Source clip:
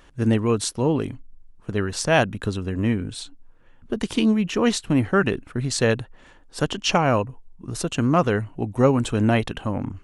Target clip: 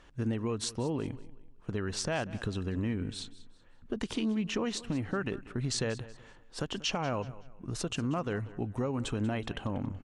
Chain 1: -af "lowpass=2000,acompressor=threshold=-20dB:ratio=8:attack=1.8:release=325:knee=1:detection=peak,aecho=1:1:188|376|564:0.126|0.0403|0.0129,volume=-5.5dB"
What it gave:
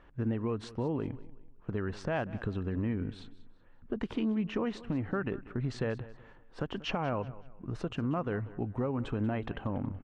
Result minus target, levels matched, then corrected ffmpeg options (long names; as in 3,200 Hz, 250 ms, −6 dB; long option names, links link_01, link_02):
8,000 Hz band −19.0 dB
-af "lowpass=7700,acompressor=threshold=-20dB:ratio=8:attack=1.8:release=325:knee=1:detection=peak,aecho=1:1:188|376|564:0.126|0.0403|0.0129,volume=-5.5dB"